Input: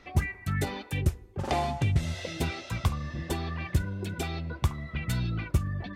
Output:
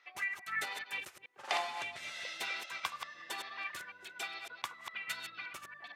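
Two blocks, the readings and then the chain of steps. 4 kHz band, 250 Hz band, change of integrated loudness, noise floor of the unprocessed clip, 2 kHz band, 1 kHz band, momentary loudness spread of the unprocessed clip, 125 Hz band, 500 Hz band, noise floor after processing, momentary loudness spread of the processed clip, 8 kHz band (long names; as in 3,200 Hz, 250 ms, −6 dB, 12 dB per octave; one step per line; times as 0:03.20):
−1.0 dB, −27.5 dB, −8.5 dB, −50 dBFS, +0.5 dB, −5.0 dB, 6 LU, below −40 dB, −12.5 dB, −59 dBFS, 10 LU, −5.0 dB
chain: delay that plays each chunk backwards 140 ms, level −4.5 dB
high-pass filter 1,400 Hz 12 dB per octave
high-shelf EQ 3,900 Hz −10 dB
expander for the loud parts 1.5 to 1, over −54 dBFS
level +5.5 dB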